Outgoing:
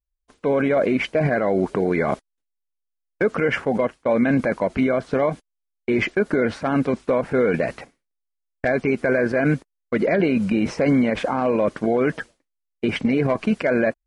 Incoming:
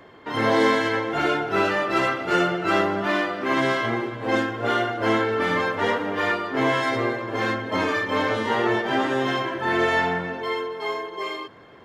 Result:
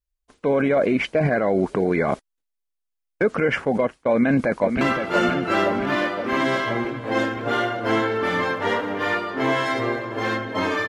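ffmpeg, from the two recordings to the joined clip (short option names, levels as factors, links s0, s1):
-filter_complex "[0:a]apad=whole_dur=10.88,atrim=end=10.88,atrim=end=4.812[s0];[1:a]atrim=start=1.978:end=8.05[s1];[s0][s1]acrossfade=d=0.004:c1=hsin:c2=hsin,asplit=2[s2][s3];[s3]afade=t=in:st=4.1:d=0.01,afade=t=out:st=4.81:d=0.01,aecho=0:1:520|1040|1560|2080|2600|3120|3640|4160|4680|5200|5720|6240:0.473151|0.354863|0.266148|0.199611|0.149708|0.112281|0.0842108|0.0631581|0.0473686|0.0355264|0.0266448|0.0199836[s4];[s2][s4]amix=inputs=2:normalize=0"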